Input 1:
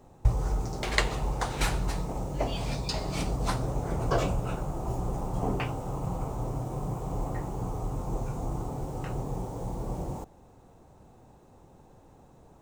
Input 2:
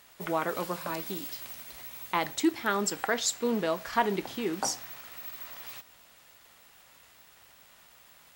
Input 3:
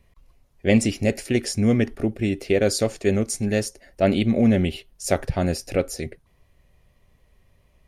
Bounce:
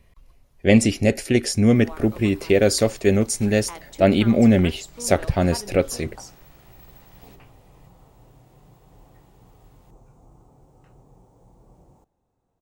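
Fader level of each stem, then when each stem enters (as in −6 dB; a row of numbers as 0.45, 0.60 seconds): −19.5, −10.5, +3.0 decibels; 1.80, 1.55, 0.00 seconds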